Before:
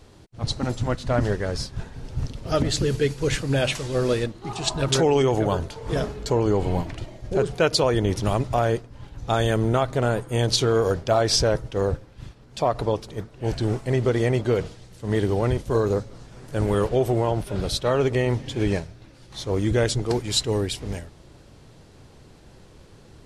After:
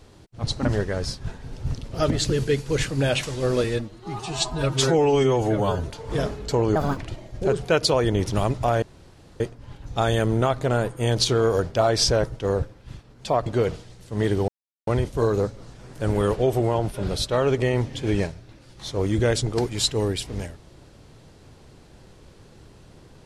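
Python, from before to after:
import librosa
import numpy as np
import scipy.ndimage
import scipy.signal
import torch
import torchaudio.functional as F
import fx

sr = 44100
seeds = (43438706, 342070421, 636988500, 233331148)

y = fx.edit(x, sr, fx.cut(start_s=0.65, length_s=0.52),
    fx.stretch_span(start_s=4.16, length_s=1.49, factor=1.5),
    fx.speed_span(start_s=6.53, length_s=0.34, speed=1.57),
    fx.insert_room_tone(at_s=8.72, length_s=0.58),
    fx.cut(start_s=12.78, length_s=1.6),
    fx.insert_silence(at_s=15.4, length_s=0.39), tone=tone)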